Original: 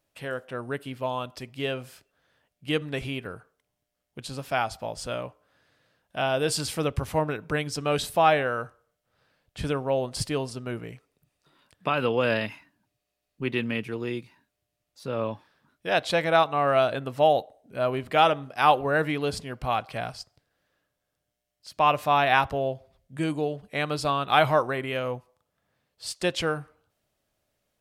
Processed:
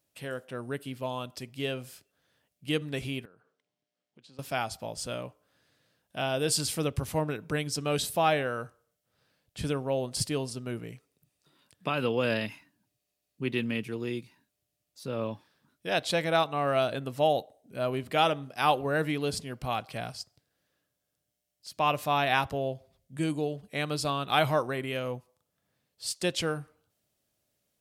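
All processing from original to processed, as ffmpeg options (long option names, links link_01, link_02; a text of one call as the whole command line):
ffmpeg -i in.wav -filter_complex "[0:a]asettb=1/sr,asplit=3[link_01][link_02][link_03];[link_01]atrim=end=3.254[link_04];[link_02]atrim=start=3.25:end=4.39,asetpts=PTS-STARTPTS,afade=type=in:duration=0.004:curve=qsin,afade=type=out:start_time=1.136:duration=0.004:curve=qsin,highpass=180,lowpass=4300,acompressor=threshold=-58dB:ratio=2.5:attack=3.2:release=140:knee=1:detection=peak[link_05];[link_03]atrim=start=4.386[link_06];[link_04][link_05]acrossfade=duration=0.004:curve1=hsin:curve2=qsin[link_07];[link_07][link_06]acrossfade=duration=0.004:curve1=qsin:curve2=hsin,highpass=frequency=160:poles=1,equalizer=frequency=1100:width=0.33:gain=-9.5,volume=3.5dB" out.wav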